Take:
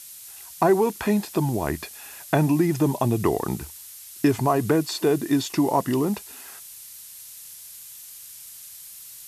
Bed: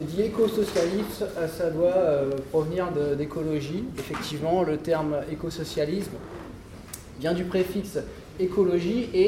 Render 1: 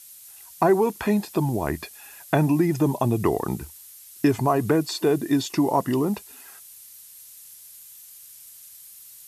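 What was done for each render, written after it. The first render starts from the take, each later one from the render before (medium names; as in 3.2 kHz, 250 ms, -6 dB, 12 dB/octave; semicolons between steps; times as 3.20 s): noise reduction 6 dB, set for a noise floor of -43 dBFS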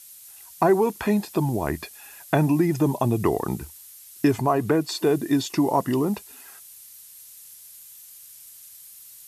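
4.41–4.89 s: tone controls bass -2 dB, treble -4 dB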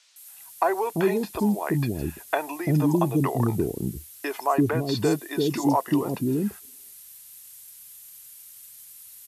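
three bands offset in time mids, highs, lows 160/340 ms, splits 450/5700 Hz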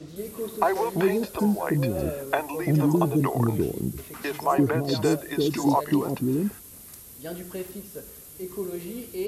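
add bed -10.5 dB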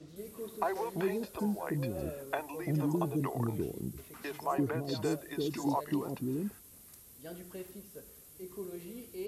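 trim -10 dB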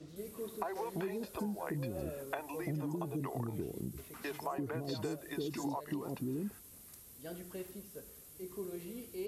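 compression 10:1, threshold -34 dBFS, peak gain reduction 8.5 dB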